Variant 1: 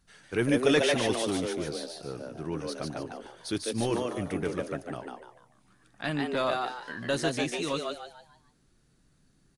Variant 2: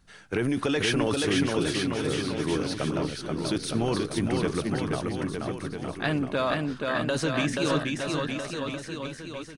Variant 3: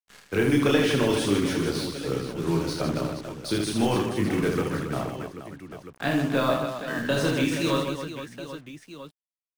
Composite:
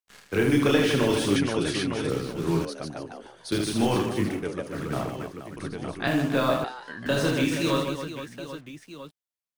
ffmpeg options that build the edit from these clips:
-filter_complex "[1:a]asplit=2[a][b];[0:a]asplit=3[c][d][e];[2:a]asplit=6[f][g][h][i][j][k];[f]atrim=end=1.362[l];[a]atrim=start=1.358:end=2.102[m];[g]atrim=start=2.098:end=2.652[n];[c]atrim=start=2.648:end=3.522[o];[h]atrim=start=3.518:end=4.46[p];[d]atrim=start=4.22:end=4.87[q];[i]atrim=start=4.63:end=5.572[r];[b]atrim=start=5.568:end=6.072[s];[j]atrim=start=6.068:end=6.642[t];[e]atrim=start=6.638:end=7.062[u];[k]atrim=start=7.058[v];[l][m]acrossfade=d=0.004:c1=hsin:c2=hsin[w];[w][n]acrossfade=d=0.004:c1=hsin:c2=hsin[x];[x][o]acrossfade=d=0.004:c1=hsin:c2=hsin[y];[y][p]acrossfade=d=0.004:c1=hsin:c2=hsin[z];[z][q]acrossfade=d=0.24:c1=tri:c2=tri[aa];[aa][r]acrossfade=d=0.24:c1=tri:c2=tri[ab];[ab][s]acrossfade=d=0.004:c1=hsin:c2=hsin[ac];[ac][t]acrossfade=d=0.004:c1=hsin:c2=hsin[ad];[ad][u]acrossfade=d=0.004:c1=hsin:c2=hsin[ae];[ae][v]acrossfade=d=0.004:c1=hsin:c2=hsin"

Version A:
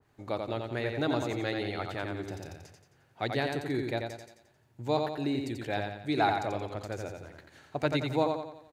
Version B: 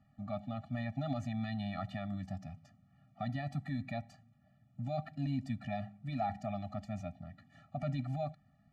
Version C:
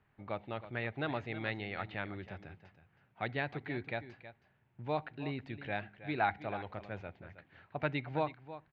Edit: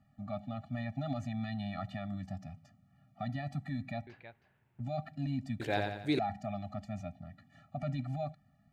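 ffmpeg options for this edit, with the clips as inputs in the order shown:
-filter_complex "[1:a]asplit=3[a][b][c];[a]atrim=end=4.072[d];[2:a]atrim=start=4.068:end=4.802[e];[b]atrim=start=4.798:end=5.602[f];[0:a]atrim=start=5.598:end=6.192[g];[c]atrim=start=6.188[h];[d][e]acrossfade=d=0.004:c1=hsin:c2=hsin[i];[i][f]acrossfade=d=0.004:c1=hsin:c2=hsin[j];[j][g]acrossfade=d=0.004:c1=hsin:c2=hsin[k];[k][h]acrossfade=d=0.004:c1=hsin:c2=hsin"

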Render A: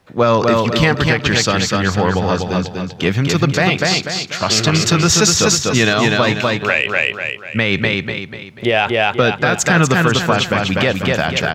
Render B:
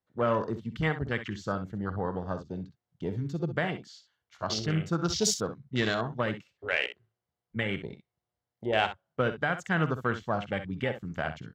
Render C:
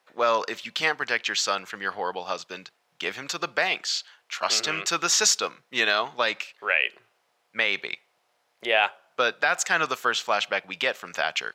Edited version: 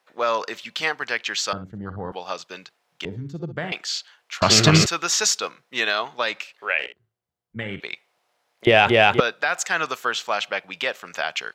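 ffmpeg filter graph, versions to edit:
-filter_complex "[1:a]asplit=3[a][b][c];[0:a]asplit=2[d][e];[2:a]asplit=6[f][g][h][i][j][k];[f]atrim=end=1.532[l];[a]atrim=start=1.528:end=2.122[m];[g]atrim=start=2.118:end=3.052[n];[b]atrim=start=3.048:end=3.722[o];[h]atrim=start=3.718:end=4.422[p];[d]atrim=start=4.418:end=4.862[q];[i]atrim=start=4.858:end=6.792[r];[c]atrim=start=6.788:end=7.802[s];[j]atrim=start=7.798:end=8.672[t];[e]atrim=start=8.668:end=9.202[u];[k]atrim=start=9.198[v];[l][m]acrossfade=d=0.004:c1=hsin:c2=hsin[w];[w][n]acrossfade=d=0.004:c1=hsin:c2=hsin[x];[x][o]acrossfade=d=0.004:c1=hsin:c2=hsin[y];[y][p]acrossfade=d=0.004:c1=hsin:c2=hsin[z];[z][q]acrossfade=d=0.004:c1=hsin:c2=hsin[aa];[aa][r]acrossfade=d=0.004:c1=hsin:c2=hsin[ab];[ab][s]acrossfade=d=0.004:c1=hsin:c2=hsin[ac];[ac][t]acrossfade=d=0.004:c1=hsin:c2=hsin[ad];[ad][u]acrossfade=d=0.004:c1=hsin:c2=hsin[ae];[ae][v]acrossfade=d=0.004:c1=hsin:c2=hsin"

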